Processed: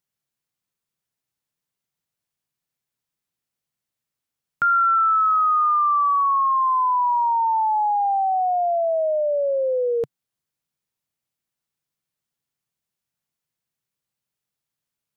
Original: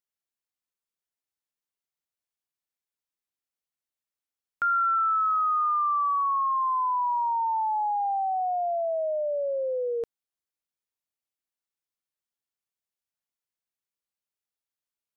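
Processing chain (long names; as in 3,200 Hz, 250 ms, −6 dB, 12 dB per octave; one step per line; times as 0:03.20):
parametric band 140 Hz +12.5 dB 1.1 octaves
level +6 dB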